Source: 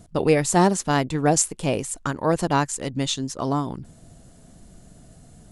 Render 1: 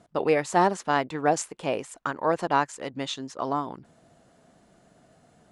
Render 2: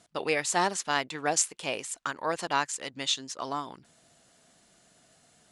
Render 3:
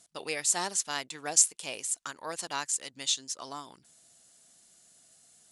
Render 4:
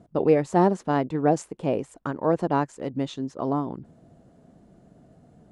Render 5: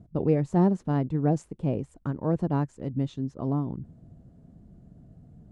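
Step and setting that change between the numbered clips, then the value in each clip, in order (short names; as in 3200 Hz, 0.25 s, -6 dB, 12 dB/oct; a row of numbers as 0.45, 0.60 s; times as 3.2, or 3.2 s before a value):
band-pass, frequency: 1100, 2800, 7000, 420, 130 Hz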